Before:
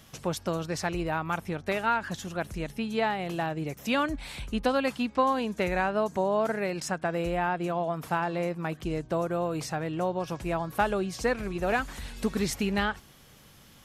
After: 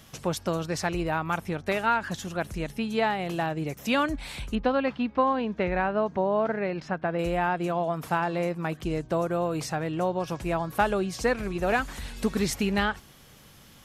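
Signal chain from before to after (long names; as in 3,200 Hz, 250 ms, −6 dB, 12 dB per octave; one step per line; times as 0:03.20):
0:04.55–0:07.19: high-frequency loss of the air 270 metres
level +2 dB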